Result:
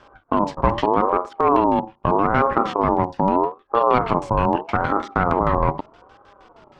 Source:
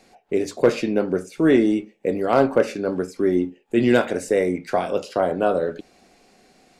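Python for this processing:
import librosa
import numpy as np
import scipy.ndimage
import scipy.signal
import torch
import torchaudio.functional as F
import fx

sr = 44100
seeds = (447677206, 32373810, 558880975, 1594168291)

p1 = np.where(x < 0.0, 10.0 ** (-7.0 / 20.0) * x, x)
p2 = fx.low_shelf(p1, sr, hz=440.0, db=5.5)
p3 = fx.over_compress(p2, sr, threshold_db=-23.0, ratio=-1.0)
p4 = p2 + (p3 * librosa.db_to_amplitude(2.5))
p5 = fx.filter_lfo_lowpass(p4, sr, shape='square', hz=6.4, low_hz=480.0, high_hz=3100.0, q=0.83)
p6 = fx.ring_lfo(p5, sr, carrier_hz=680.0, swing_pct=20, hz=0.8)
y = p6 * librosa.db_to_amplitude(-1.5)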